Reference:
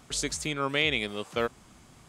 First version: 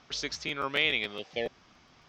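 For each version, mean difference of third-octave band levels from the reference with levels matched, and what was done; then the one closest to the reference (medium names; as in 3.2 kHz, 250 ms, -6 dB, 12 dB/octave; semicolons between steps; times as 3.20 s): 5.0 dB: bass shelf 330 Hz -9.5 dB; spectral replace 1.20–1.64 s, 820–1700 Hz after; elliptic low-pass 5.7 kHz, stop band 50 dB; crackling interface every 0.14 s, samples 512, repeat, from 0.33 s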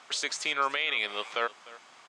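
8.5 dB: high-pass 820 Hz 12 dB/octave; peak limiter -23.5 dBFS, peak gain reduction 10.5 dB; distance through air 110 m; delay 302 ms -19 dB; trim +8 dB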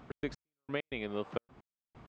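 15.0 dB: bass shelf 180 Hz -6 dB; compression 3:1, threshold -33 dBFS, peak gain reduction 10 dB; trance gate "x.x...x.xxx" 131 bpm -60 dB; tape spacing loss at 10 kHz 40 dB; trim +5.5 dB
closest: first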